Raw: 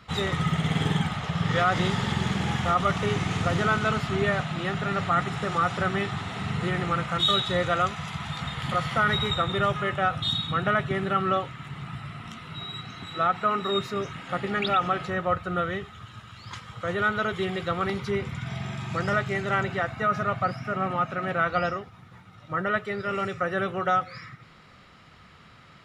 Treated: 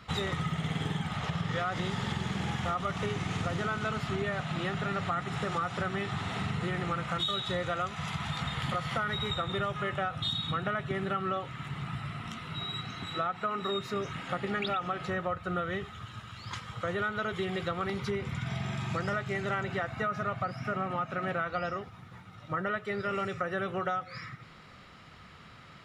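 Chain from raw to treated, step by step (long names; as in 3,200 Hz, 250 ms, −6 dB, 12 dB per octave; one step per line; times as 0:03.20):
downward compressor, threshold −29 dBFS, peak gain reduction 10.5 dB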